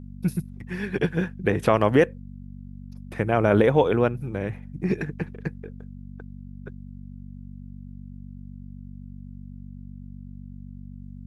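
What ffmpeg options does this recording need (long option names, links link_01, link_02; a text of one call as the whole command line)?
ffmpeg -i in.wav -af "bandreject=frequency=47.9:width_type=h:width=4,bandreject=frequency=95.8:width_type=h:width=4,bandreject=frequency=143.7:width_type=h:width=4,bandreject=frequency=191.6:width_type=h:width=4,bandreject=frequency=239.5:width_type=h:width=4" out.wav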